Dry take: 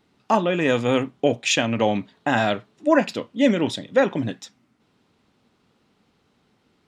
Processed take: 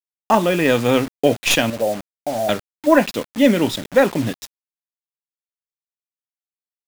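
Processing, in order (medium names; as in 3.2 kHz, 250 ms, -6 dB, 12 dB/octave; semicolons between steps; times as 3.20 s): tracing distortion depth 0.055 ms; 1.70–2.49 s: four-pole ladder low-pass 680 Hz, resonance 70%; word length cut 6-bit, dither none; trim +4 dB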